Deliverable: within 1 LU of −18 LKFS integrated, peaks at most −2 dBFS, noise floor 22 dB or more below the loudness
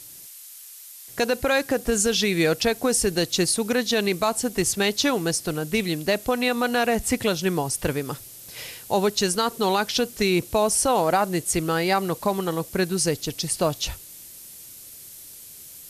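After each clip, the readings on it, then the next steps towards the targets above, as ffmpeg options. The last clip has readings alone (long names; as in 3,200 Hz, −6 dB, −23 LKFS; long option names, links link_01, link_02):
background noise floor −43 dBFS; target noise floor −45 dBFS; integrated loudness −23.0 LKFS; sample peak −9.5 dBFS; target loudness −18.0 LKFS
→ -af "afftdn=noise_reduction=6:noise_floor=-43"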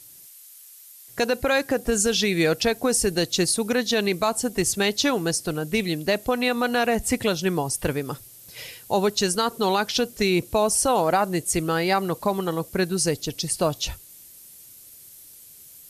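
background noise floor −47 dBFS; integrated loudness −23.0 LKFS; sample peak −9.5 dBFS; target loudness −18.0 LKFS
→ -af "volume=5dB"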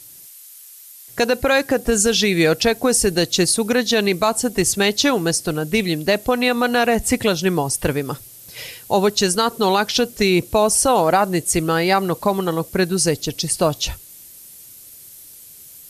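integrated loudness −18.0 LKFS; sample peak −4.5 dBFS; background noise floor −42 dBFS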